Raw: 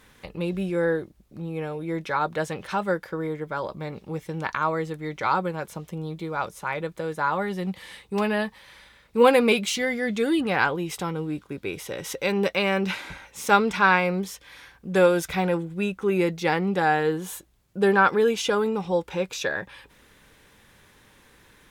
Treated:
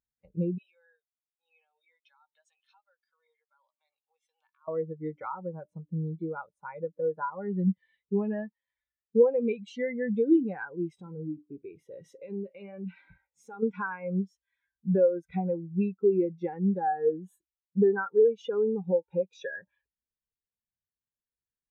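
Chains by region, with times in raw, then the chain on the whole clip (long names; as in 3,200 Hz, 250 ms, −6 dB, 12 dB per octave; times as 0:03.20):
0:00.58–0:04.68: high-pass filter 730 Hz 24 dB per octave + downward compressor 3 to 1, threshold −46 dBFS + flat-topped bell 5,400 Hz +11 dB 2.4 octaves
0:10.92–0:13.63: downward compressor 16 to 1, threshold −30 dBFS + double-tracking delay 45 ms −12.5 dB
whole clip: downward compressor 6 to 1, threshold −28 dBFS; hum removal 299.6 Hz, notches 3; every bin expanded away from the loudest bin 2.5 to 1; level +6 dB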